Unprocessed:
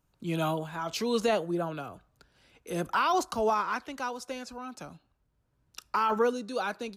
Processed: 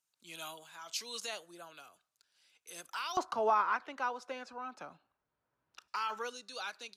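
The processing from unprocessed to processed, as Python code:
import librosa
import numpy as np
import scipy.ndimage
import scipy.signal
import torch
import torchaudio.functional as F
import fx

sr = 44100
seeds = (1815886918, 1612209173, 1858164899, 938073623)

y = fx.bandpass_q(x, sr, hz=fx.steps((0.0, 7500.0), (3.17, 1200.0), (5.88, 4800.0)), q=0.68)
y = fx.end_taper(y, sr, db_per_s=520.0)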